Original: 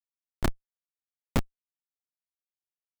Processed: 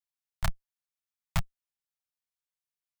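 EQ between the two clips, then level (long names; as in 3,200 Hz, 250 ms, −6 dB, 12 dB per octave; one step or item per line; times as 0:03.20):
elliptic band-stop filter 170–610 Hz
parametric band 540 Hz −11.5 dB 0.44 octaves
0.0 dB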